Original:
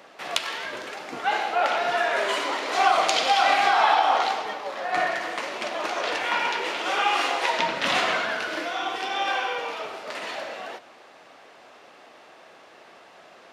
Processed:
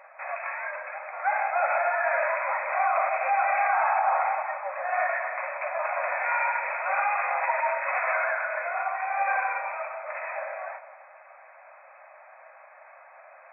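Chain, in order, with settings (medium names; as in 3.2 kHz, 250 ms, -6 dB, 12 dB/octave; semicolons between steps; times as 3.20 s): peak limiter -15.5 dBFS, peak gain reduction 10.5 dB; brick-wall FIR band-pass 520–2600 Hz; simulated room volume 1200 m³, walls mixed, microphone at 0.57 m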